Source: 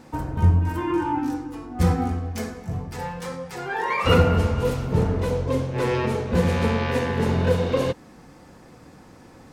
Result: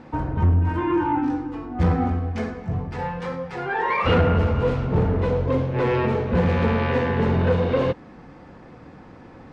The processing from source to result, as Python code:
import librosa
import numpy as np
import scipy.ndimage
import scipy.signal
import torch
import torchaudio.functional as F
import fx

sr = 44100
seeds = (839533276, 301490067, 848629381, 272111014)

y = 10.0 ** (-16.5 / 20.0) * np.tanh(x / 10.0 ** (-16.5 / 20.0))
y = scipy.signal.sosfilt(scipy.signal.butter(2, 2800.0, 'lowpass', fs=sr, output='sos'), y)
y = y * 10.0 ** (3.5 / 20.0)